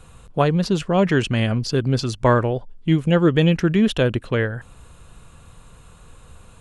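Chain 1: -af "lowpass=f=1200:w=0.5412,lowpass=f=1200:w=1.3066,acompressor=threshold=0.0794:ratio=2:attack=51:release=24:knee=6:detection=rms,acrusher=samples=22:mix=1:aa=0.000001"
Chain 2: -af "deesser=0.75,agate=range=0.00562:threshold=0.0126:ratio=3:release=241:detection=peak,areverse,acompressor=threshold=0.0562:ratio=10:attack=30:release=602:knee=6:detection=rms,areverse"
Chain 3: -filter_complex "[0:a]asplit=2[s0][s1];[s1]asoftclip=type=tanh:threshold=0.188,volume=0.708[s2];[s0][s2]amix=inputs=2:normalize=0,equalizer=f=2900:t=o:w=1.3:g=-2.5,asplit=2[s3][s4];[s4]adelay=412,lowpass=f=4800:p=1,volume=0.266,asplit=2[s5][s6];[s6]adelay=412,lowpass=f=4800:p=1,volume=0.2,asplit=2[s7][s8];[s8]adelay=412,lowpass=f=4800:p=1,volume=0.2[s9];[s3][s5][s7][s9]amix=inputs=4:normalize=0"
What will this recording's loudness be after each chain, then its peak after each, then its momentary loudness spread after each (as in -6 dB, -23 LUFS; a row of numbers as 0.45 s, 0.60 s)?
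-22.0 LUFS, -31.0 LUFS, -16.0 LUFS; -9.5 dBFS, -17.0 dBFS, -2.0 dBFS; 6 LU, 4 LU, 10 LU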